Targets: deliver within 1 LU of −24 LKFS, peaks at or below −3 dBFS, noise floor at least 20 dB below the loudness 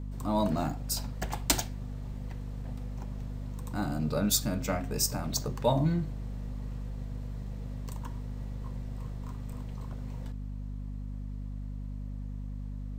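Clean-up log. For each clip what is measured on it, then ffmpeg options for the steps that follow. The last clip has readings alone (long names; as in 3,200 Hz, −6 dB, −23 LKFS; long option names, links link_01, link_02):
mains hum 50 Hz; hum harmonics up to 250 Hz; level of the hum −35 dBFS; integrated loudness −34.0 LKFS; sample peak −11.5 dBFS; target loudness −24.0 LKFS
→ -af "bandreject=frequency=50:width_type=h:width=6,bandreject=frequency=100:width_type=h:width=6,bandreject=frequency=150:width_type=h:width=6,bandreject=frequency=200:width_type=h:width=6,bandreject=frequency=250:width_type=h:width=6"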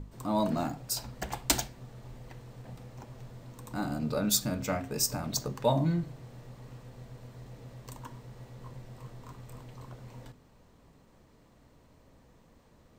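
mains hum none found; integrated loudness −31.0 LKFS; sample peak −11.0 dBFS; target loudness −24.0 LKFS
→ -af "volume=7dB"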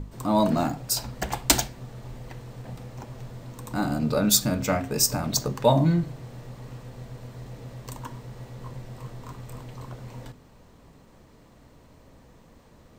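integrated loudness −24.0 LKFS; sample peak −4.0 dBFS; background noise floor −54 dBFS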